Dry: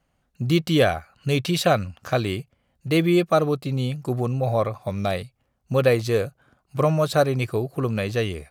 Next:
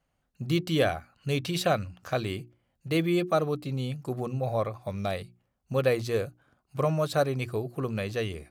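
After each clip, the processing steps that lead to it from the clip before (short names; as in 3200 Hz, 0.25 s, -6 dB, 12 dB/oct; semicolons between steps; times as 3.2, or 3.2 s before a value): notches 60/120/180/240/300/360 Hz; gain -6 dB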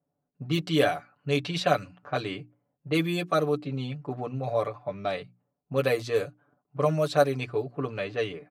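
low-pass opened by the level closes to 590 Hz, open at -22 dBFS; Bessel high-pass 200 Hz, order 2; comb 6.9 ms, depth 78%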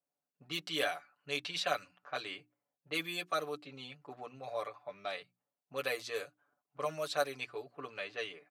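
HPF 1500 Hz 6 dB/oct; gain -3 dB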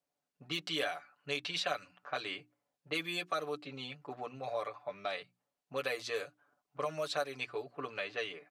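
high shelf 11000 Hz -11 dB; compressor 2.5:1, threshold -38 dBFS, peak gain reduction 8.5 dB; gain +4.5 dB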